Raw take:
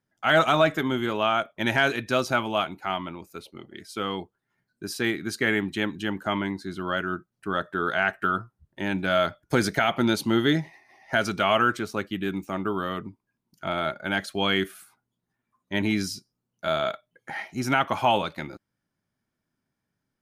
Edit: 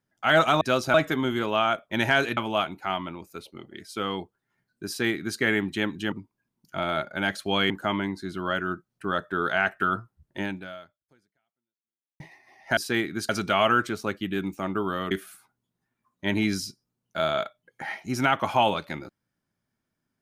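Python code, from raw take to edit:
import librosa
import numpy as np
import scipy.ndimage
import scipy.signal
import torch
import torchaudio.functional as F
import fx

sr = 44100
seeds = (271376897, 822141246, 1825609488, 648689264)

y = fx.edit(x, sr, fx.move(start_s=2.04, length_s=0.33, to_s=0.61),
    fx.duplicate(start_s=4.87, length_s=0.52, to_s=11.19),
    fx.fade_out_span(start_s=8.83, length_s=1.79, curve='exp'),
    fx.move(start_s=13.01, length_s=1.58, to_s=6.12), tone=tone)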